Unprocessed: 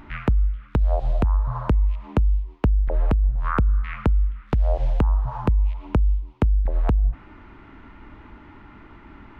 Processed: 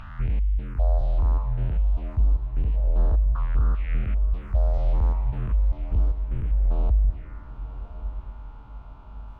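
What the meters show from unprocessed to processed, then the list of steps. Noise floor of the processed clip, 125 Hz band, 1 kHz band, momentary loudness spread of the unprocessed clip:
-41 dBFS, -2.0 dB, -9.0 dB, 2 LU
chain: stepped spectrum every 0.2 s; envelope phaser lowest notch 300 Hz, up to 2400 Hz, full sweep at -16.5 dBFS; diffused feedback echo 1.097 s, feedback 47%, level -13 dB

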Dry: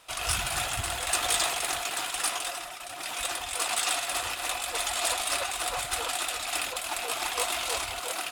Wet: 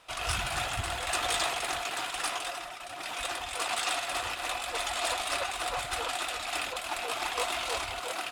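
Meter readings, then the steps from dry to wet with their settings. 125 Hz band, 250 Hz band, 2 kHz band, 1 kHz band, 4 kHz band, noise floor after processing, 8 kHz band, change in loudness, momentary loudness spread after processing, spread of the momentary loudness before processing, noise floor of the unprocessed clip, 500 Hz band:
0.0 dB, 0.0 dB, -1.0 dB, 0.0 dB, -2.5 dB, -41 dBFS, -7.0 dB, -3.0 dB, 5 LU, 6 LU, -39 dBFS, 0.0 dB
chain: high shelf 6500 Hz -11.5 dB

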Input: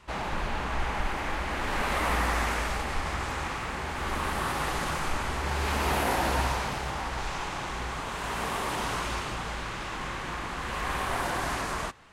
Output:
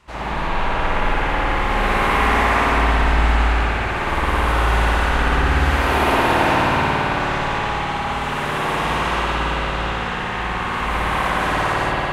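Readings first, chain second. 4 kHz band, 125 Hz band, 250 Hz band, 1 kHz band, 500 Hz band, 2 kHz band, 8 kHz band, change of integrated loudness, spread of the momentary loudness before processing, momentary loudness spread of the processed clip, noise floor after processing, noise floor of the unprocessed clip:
+9.0 dB, +12.0 dB, +11.5 dB, +11.5 dB, +11.5 dB, +11.5 dB, +1.0 dB, +11.5 dB, 7 LU, 7 LU, -24 dBFS, -35 dBFS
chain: split-band echo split 720 Hz, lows 0.41 s, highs 0.199 s, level -7 dB; spring tank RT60 3.7 s, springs 54 ms, chirp 40 ms, DRR -10 dB

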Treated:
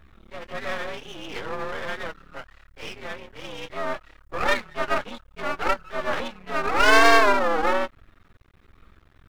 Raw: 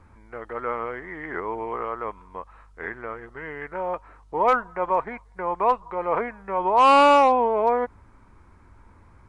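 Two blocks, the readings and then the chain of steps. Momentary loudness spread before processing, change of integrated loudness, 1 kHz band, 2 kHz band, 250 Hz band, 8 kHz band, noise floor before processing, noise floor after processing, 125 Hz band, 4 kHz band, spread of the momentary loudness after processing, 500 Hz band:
21 LU, -1.0 dB, -4.5 dB, +8.5 dB, -1.0 dB, n/a, -53 dBFS, -57 dBFS, +3.0 dB, +6.5 dB, 21 LU, -2.5 dB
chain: inharmonic rescaling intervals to 122%; half-wave rectifier; gain +5 dB

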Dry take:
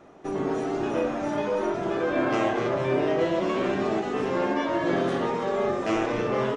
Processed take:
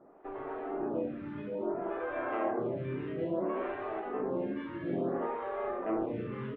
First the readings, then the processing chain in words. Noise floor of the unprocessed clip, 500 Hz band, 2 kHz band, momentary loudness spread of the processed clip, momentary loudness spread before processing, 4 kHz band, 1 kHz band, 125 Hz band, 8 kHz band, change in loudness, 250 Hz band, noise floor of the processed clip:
-31 dBFS, -9.5 dB, -12.5 dB, 5 LU, 3 LU, under -20 dB, -9.5 dB, -8.0 dB, n/a, -9.5 dB, -8.5 dB, -43 dBFS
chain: Gaussian blur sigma 3.5 samples; photocell phaser 0.59 Hz; gain -5.5 dB

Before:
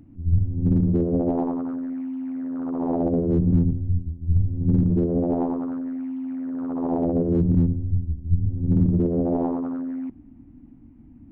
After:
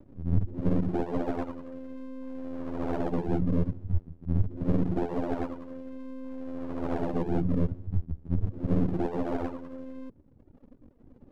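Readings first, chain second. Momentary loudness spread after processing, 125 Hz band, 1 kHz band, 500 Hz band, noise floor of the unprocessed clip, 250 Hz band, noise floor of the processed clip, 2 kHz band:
14 LU, -8.5 dB, -3.0 dB, -6.0 dB, -48 dBFS, -8.5 dB, -58 dBFS, n/a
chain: Bessel low-pass 1200 Hz; half-wave rectifier; reverb removal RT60 1.2 s

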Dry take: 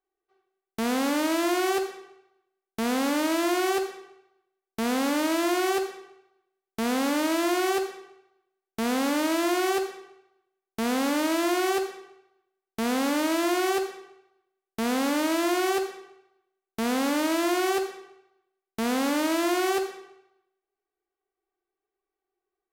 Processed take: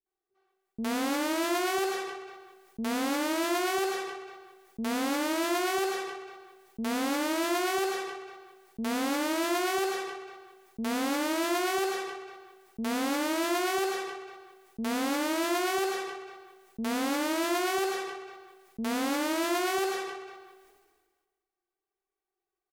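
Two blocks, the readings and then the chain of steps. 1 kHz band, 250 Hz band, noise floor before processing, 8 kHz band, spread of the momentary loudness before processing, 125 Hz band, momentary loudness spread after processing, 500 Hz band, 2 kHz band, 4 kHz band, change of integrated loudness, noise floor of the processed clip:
-2.0 dB, -4.5 dB, under -85 dBFS, -2.0 dB, 11 LU, n/a, 19 LU, -3.5 dB, -2.0 dB, -2.0 dB, -4.0 dB, under -85 dBFS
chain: bands offset in time lows, highs 60 ms, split 390 Hz; sustainer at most 38 dB/s; gain -3 dB

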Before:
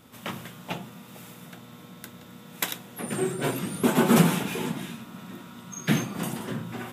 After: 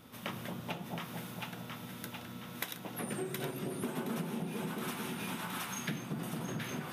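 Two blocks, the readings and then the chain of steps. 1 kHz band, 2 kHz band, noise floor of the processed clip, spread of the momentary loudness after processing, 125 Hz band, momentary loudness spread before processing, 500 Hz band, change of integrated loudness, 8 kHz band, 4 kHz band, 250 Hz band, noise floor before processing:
-9.5 dB, -8.0 dB, -47 dBFS, 6 LU, -11.0 dB, 23 LU, -11.0 dB, -12.5 dB, -9.5 dB, -8.0 dB, -12.0 dB, -48 dBFS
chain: bell 7500 Hz -9 dB 0.2 oct; on a send: split-band echo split 860 Hz, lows 0.224 s, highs 0.719 s, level -3.5 dB; on the sum: compressor 8:1, threshold -33 dBFS, peak gain reduction 20.5 dB; gain -2 dB

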